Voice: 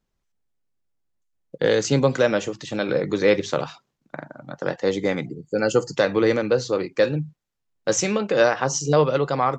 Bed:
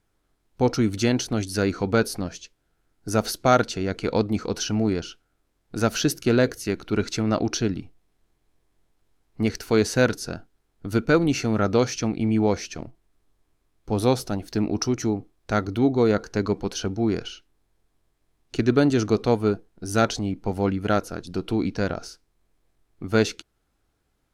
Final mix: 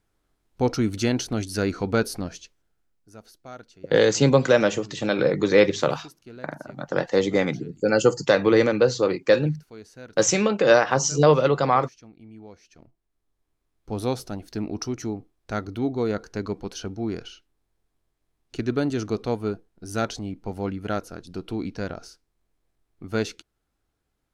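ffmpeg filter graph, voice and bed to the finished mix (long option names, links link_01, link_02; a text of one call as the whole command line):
ffmpeg -i stem1.wav -i stem2.wav -filter_complex "[0:a]adelay=2300,volume=1.5dB[link_01];[1:a]volume=16.5dB,afade=type=out:start_time=2.35:duration=0.67:silence=0.0794328,afade=type=in:start_time=12.62:duration=1.2:silence=0.125893[link_02];[link_01][link_02]amix=inputs=2:normalize=0" out.wav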